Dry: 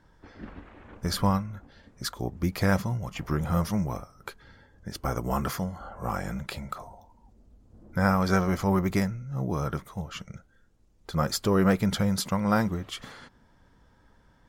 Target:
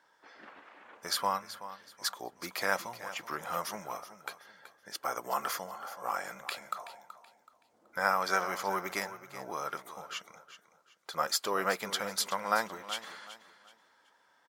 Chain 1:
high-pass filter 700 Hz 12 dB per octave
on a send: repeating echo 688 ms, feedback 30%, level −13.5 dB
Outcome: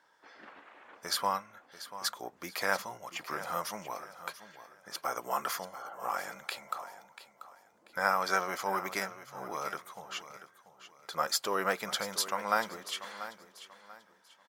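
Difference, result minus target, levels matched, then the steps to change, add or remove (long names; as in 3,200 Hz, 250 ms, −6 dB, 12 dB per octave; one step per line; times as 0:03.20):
echo 311 ms late
change: repeating echo 377 ms, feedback 30%, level −13.5 dB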